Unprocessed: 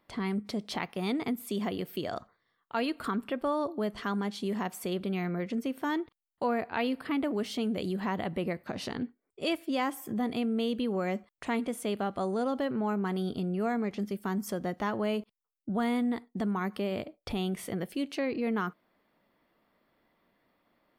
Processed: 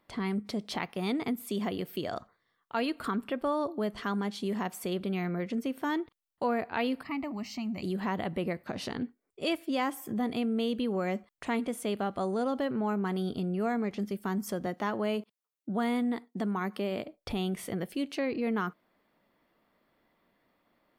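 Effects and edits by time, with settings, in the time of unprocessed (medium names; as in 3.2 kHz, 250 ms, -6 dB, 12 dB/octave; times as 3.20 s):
7.03–7.83 s: static phaser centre 2.3 kHz, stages 8
14.66–17.05 s: high-pass 150 Hz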